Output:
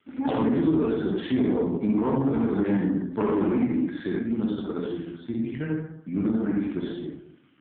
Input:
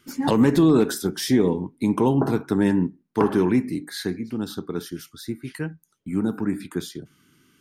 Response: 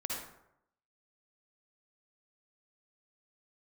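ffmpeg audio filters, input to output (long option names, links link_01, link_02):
-filter_complex "[0:a]asplit=3[link_01][link_02][link_03];[link_01]afade=type=out:start_time=1.79:duration=0.02[link_04];[link_02]highshelf=frequency=2700:gain=-4.5,afade=type=in:start_time=1.79:duration=0.02,afade=type=out:start_time=2.2:duration=0.02[link_05];[link_03]afade=type=in:start_time=2.2:duration=0.02[link_06];[link_04][link_05][link_06]amix=inputs=3:normalize=0[link_07];[1:a]atrim=start_sample=2205[link_08];[link_07][link_08]afir=irnorm=-1:irlink=0,acompressor=threshold=-17dB:ratio=5,lowshelf=frequency=71:gain=-7,aeval=exprs='(tanh(7.08*val(0)+0.1)-tanh(0.1))/7.08':channel_layout=same,volume=1.5dB" -ar 8000 -c:a libopencore_amrnb -b:a 5150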